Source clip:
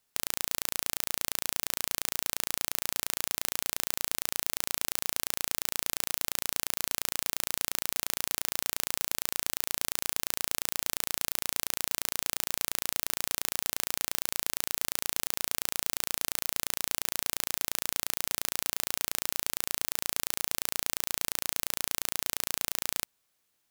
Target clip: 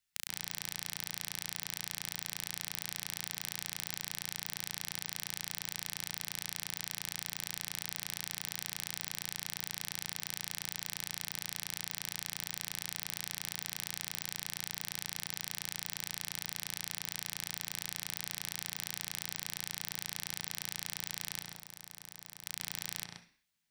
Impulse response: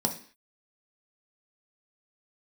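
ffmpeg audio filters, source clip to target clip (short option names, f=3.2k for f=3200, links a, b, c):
-filter_complex "[0:a]equalizer=f=250:t=o:w=1:g=-8,equalizer=f=500:t=o:w=1:g=-12,equalizer=f=1k:t=o:w=1:g=-9,equalizer=f=2k:t=o:w=1:g=3,equalizer=f=16k:t=o:w=1:g=-5,asettb=1/sr,asplit=3[a][b][c];[a]atrim=end=21.424[d];[b]atrim=start=21.42:end=22.44,asetpts=PTS-STARTPTS,afade=t=in:d=0.004:c=qsin,afade=t=out:st=1.016:d=0.004:c=qsin,acrossover=split=2000|5200[e][f][g];[e]acompressor=threshold=-52dB:ratio=4[h];[f]acompressor=threshold=-54dB:ratio=4[i];[g]acompressor=threshold=-39dB:ratio=4[j];[h][i][j]amix=inputs=3:normalize=0[k];[c]atrim=start=22.436[l];[d][k]acrossfade=d=0.004:c1=hsin:c2=qsin[m];[m][l]acrossfade=d=0.004:c1=qsin:c2=hsin,asplit=2[n][o];[1:a]atrim=start_sample=2205,lowpass=3.4k,adelay=128[p];[o][p]afir=irnorm=-1:irlink=0,volume=-6dB[q];[n][q]amix=inputs=2:normalize=0,volume=-6dB"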